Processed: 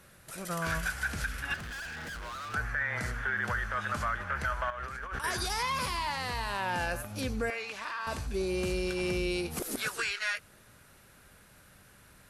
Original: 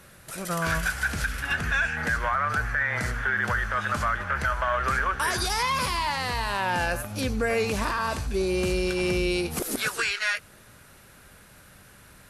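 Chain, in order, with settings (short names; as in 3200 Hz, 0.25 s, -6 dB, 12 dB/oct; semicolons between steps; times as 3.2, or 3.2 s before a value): 1.54–2.54 hard clip -33 dBFS, distortion -13 dB; 4.7–5.24 negative-ratio compressor -33 dBFS, ratio -1; 7.5–8.07 band-pass 2300 Hz, Q 0.74; gain -6 dB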